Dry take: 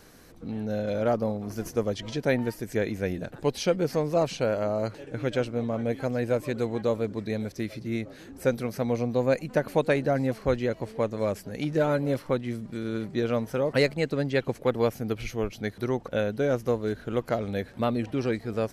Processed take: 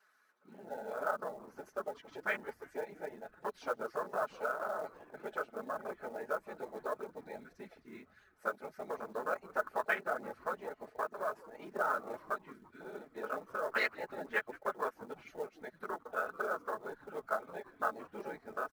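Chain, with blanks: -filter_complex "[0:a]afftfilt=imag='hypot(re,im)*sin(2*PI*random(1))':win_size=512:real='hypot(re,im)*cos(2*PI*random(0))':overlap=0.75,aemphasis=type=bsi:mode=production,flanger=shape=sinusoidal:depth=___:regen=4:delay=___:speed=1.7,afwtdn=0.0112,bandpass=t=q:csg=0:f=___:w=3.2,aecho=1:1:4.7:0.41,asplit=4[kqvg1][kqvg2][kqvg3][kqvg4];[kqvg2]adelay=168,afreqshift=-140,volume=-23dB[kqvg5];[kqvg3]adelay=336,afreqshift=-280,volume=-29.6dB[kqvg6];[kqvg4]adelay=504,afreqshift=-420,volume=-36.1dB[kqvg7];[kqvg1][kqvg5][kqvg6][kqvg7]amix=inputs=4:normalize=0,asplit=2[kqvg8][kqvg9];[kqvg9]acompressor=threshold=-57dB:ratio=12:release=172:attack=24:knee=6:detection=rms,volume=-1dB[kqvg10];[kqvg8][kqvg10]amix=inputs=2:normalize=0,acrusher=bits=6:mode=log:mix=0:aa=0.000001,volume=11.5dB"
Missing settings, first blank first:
4.2, 5, 1400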